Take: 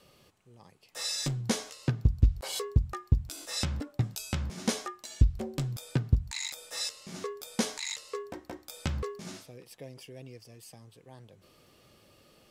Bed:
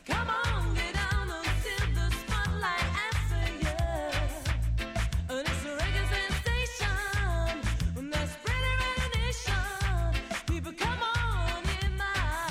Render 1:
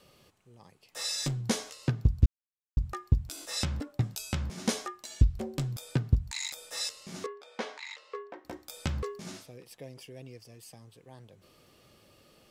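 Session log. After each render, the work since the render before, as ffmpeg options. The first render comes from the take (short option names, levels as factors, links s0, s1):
-filter_complex "[0:a]asettb=1/sr,asplit=3[s0][s1][s2];[s0]atrim=end=7.264[s3];[s1]atrim=start=7.26:end=8.45,asetpts=PTS-STARTPTS,afade=t=in:d=0.004:c=qsin,afade=t=out:st=1.186:d=0.004:c=qsin,highpass=450,lowpass=2500[s4];[s2]atrim=start=8.446[s5];[s3][s4]acrossfade=d=0.004:c1=hsin:c2=qsin[s6];[s6][s5]acrossfade=d=0.004:c1=qsin:c2=hsin,asplit=3[s7][s8][s9];[s7]atrim=end=2.26,asetpts=PTS-STARTPTS,afade=t=out:st=2.256:d=0.004:c=hsin[s10];[s8]atrim=start=2.26:end=2.77,asetpts=PTS-STARTPTS,volume=0[s11];[s9]atrim=start=2.77,asetpts=PTS-STARTPTS,afade=t=in:d=0.004:c=hsin[s12];[s10][s11][s12]concat=n=3:v=0:a=1"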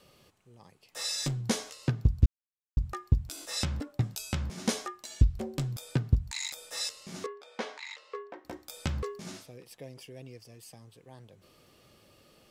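-af anull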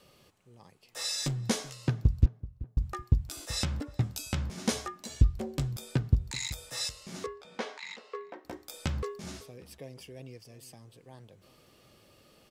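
-filter_complex "[0:a]asplit=2[s0][s1];[s1]adelay=381,lowpass=f=1100:p=1,volume=0.141,asplit=2[s2][s3];[s3]adelay=381,lowpass=f=1100:p=1,volume=0.35,asplit=2[s4][s5];[s5]adelay=381,lowpass=f=1100:p=1,volume=0.35[s6];[s0][s2][s4][s6]amix=inputs=4:normalize=0"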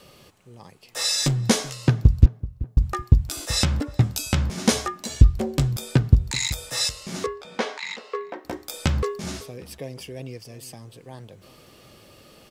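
-af "volume=3.16,alimiter=limit=0.708:level=0:latency=1"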